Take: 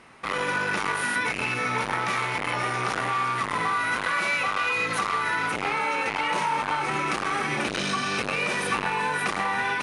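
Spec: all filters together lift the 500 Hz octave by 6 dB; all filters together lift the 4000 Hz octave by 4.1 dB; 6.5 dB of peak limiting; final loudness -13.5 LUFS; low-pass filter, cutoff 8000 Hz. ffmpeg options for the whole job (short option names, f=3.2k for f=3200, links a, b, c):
-af "lowpass=8k,equalizer=f=500:t=o:g=7,equalizer=f=4k:t=o:g=5.5,volume=11.5dB,alimiter=limit=-5dB:level=0:latency=1"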